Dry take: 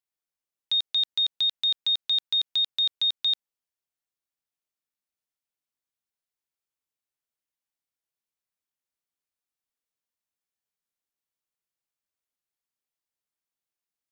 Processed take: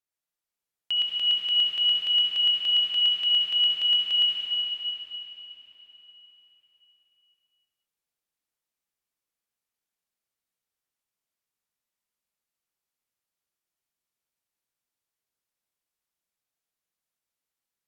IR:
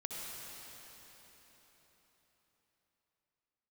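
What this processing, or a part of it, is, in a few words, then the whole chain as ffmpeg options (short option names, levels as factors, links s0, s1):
slowed and reverbed: -filter_complex "[0:a]asetrate=34839,aresample=44100[s0];[1:a]atrim=start_sample=2205[s1];[s0][s1]afir=irnorm=-1:irlink=0,volume=1.19"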